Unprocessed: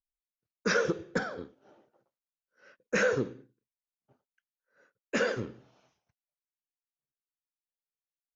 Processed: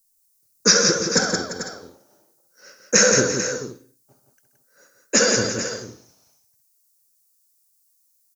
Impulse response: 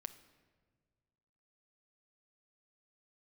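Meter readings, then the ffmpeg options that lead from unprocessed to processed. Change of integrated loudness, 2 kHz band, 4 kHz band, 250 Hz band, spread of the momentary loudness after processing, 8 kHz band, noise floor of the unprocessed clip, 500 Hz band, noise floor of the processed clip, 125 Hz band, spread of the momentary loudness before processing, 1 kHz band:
+12.5 dB, +9.0 dB, +21.5 dB, +10.5 dB, 17 LU, can't be measured, below −85 dBFS, +9.0 dB, −65 dBFS, +10.0 dB, 14 LU, +9.0 dB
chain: -af "aexciter=amount=10:drive=4.4:freq=4600,alimiter=limit=-10dB:level=0:latency=1:release=459,aecho=1:1:67|129|172|343|441|501:0.316|0.224|0.531|0.2|0.251|0.133,volume=8.5dB"

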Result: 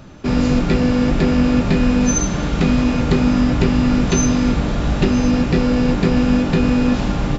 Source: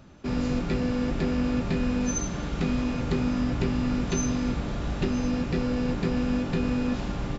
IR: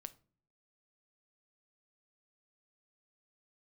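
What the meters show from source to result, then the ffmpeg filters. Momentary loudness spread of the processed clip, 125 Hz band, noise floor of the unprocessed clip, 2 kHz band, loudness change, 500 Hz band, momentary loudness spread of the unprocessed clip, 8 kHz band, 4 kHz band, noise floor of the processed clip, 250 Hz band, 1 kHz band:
3 LU, +11.0 dB, −33 dBFS, +11.0 dB, +11.0 dB, +10.5 dB, 3 LU, can't be measured, +11.0 dB, −22 dBFS, +11.0 dB, +11.0 dB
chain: -filter_complex "[0:a]asplit=2[link_01][link_02];[1:a]atrim=start_sample=2205[link_03];[link_02][link_03]afir=irnorm=-1:irlink=0,volume=11.5dB[link_04];[link_01][link_04]amix=inputs=2:normalize=0,volume=1.5dB"

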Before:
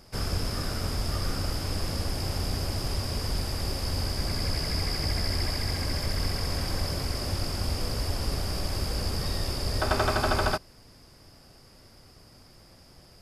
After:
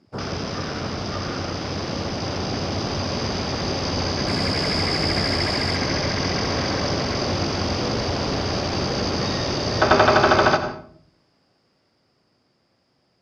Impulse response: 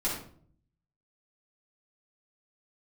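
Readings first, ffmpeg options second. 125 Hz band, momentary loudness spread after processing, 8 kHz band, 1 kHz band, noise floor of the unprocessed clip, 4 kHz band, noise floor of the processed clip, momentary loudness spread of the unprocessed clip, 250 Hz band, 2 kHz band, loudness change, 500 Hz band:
+3.5 dB, 11 LU, +4.0 dB, +11.0 dB, −54 dBFS, +7.0 dB, −66 dBFS, 5 LU, +10.5 dB, +10.5 dB, +7.5 dB, +11.5 dB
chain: -filter_complex "[0:a]highpass=150,afwtdn=0.00794,lowpass=4700,dynaudnorm=framelen=250:gausssize=21:maxgain=4.5dB,asplit=2[link_01][link_02];[1:a]atrim=start_sample=2205,adelay=87[link_03];[link_02][link_03]afir=irnorm=-1:irlink=0,volume=-16dB[link_04];[link_01][link_04]amix=inputs=2:normalize=0,volume=7dB"

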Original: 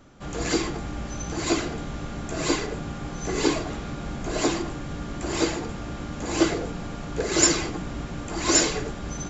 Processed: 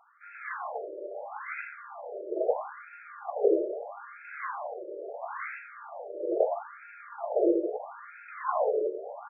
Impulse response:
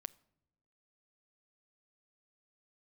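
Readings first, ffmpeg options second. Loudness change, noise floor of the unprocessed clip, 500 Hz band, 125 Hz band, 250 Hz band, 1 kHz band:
−5.5 dB, −35 dBFS, +0.5 dB, below −40 dB, −10.0 dB, −2.5 dB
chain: -filter_complex "[0:a]equalizer=frequency=540:width=0.97:gain=9.5,asplit=2[link_01][link_02];[link_02]aecho=0:1:49|79:0.266|0.355[link_03];[link_01][link_03]amix=inputs=2:normalize=0,afftfilt=real='re*between(b*sr/1024,440*pow(1900/440,0.5+0.5*sin(2*PI*0.76*pts/sr))/1.41,440*pow(1900/440,0.5+0.5*sin(2*PI*0.76*pts/sr))*1.41)':imag='im*between(b*sr/1024,440*pow(1900/440,0.5+0.5*sin(2*PI*0.76*pts/sr))/1.41,440*pow(1900/440,0.5+0.5*sin(2*PI*0.76*pts/sr))*1.41)':win_size=1024:overlap=0.75,volume=-3dB"

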